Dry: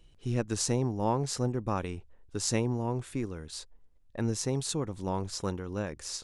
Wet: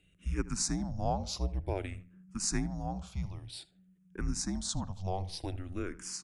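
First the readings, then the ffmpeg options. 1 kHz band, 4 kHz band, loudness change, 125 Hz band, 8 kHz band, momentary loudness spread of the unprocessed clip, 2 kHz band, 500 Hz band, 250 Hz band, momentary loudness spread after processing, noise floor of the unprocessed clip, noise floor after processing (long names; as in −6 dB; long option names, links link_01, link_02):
−4.0 dB, −2.5 dB, −4.0 dB, −4.5 dB, −1.5 dB, 12 LU, −3.0 dB, −8.0 dB, −4.5 dB, 11 LU, −59 dBFS, −67 dBFS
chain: -filter_complex "[0:a]asplit=2[link_01][link_02];[link_02]adelay=78,lowpass=frequency=2600:poles=1,volume=-16.5dB,asplit=2[link_03][link_04];[link_04]adelay=78,lowpass=frequency=2600:poles=1,volume=0.35,asplit=2[link_05][link_06];[link_06]adelay=78,lowpass=frequency=2600:poles=1,volume=0.35[link_07];[link_01][link_03][link_05][link_07]amix=inputs=4:normalize=0,afreqshift=-190,asplit=2[link_08][link_09];[link_09]afreqshift=-0.53[link_10];[link_08][link_10]amix=inputs=2:normalize=1"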